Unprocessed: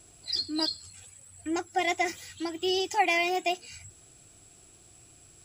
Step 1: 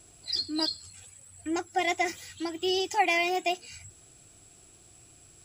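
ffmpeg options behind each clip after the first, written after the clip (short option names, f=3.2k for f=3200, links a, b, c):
-af anull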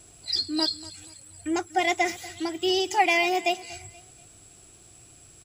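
-af "aecho=1:1:240|480|720:0.112|0.0415|0.0154,volume=3.5dB"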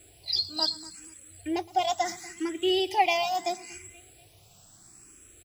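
-filter_complex "[0:a]asplit=2[a][b];[b]adelay=116.6,volume=-21dB,highshelf=f=4k:g=-2.62[c];[a][c]amix=inputs=2:normalize=0,acrusher=bits=8:mix=0:aa=0.5,asplit=2[d][e];[e]afreqshift=0.74[f];[d][f]amix=inputs=2:normalize=1"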